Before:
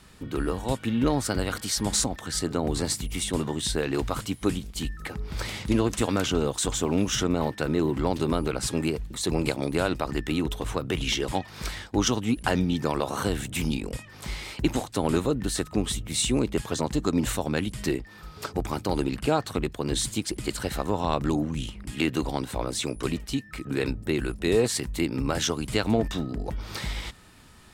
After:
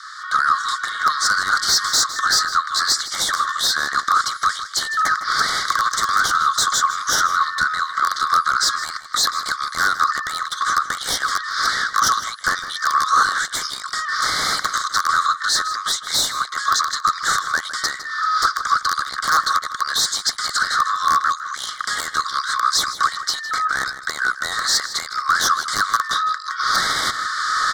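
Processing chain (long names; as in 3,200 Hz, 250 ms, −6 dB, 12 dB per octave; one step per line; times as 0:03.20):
camcorder AGC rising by 18 dB per second
wrap-around overflow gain 11.5 dB
Chebyshev high-pass filter 1,100 Hz, order 10
high-frequency loss of the air 160 metres
mid-hump overdrive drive 30 dB, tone 5,900 Hz, clips at −4.5 dBFS
brickwall limiter −13 dBFS, peak gain reduction 5 dB
Butterworth band-reject 2,600 Hz, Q 0.9
slap from a distant wall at 27 metres, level −12 dB
level +5.5 dB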